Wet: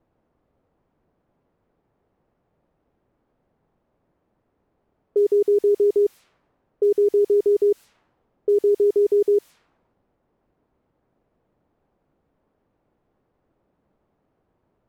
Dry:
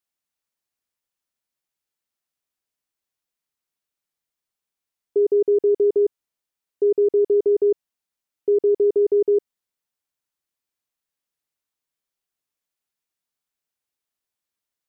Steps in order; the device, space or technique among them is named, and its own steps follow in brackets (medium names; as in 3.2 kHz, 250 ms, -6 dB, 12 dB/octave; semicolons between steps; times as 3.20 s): cassette deck with a dynamic noise filter (white noise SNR 30 dB; level-controlled noise filter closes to 510 Hz, open at -20 dBFS)